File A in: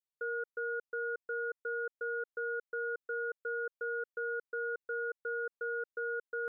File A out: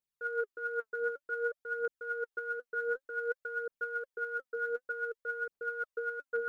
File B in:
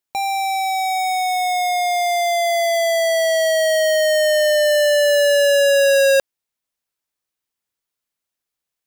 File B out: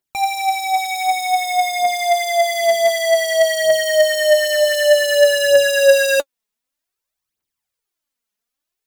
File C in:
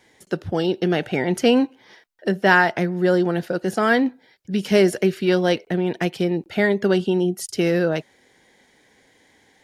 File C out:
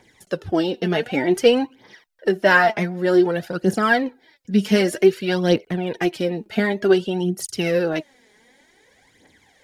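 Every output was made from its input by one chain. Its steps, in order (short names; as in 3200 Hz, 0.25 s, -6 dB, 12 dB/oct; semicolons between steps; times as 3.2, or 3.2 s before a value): phaser 0.54 Hz, delay 4.9 ms, feedback 62%; gain -1 dB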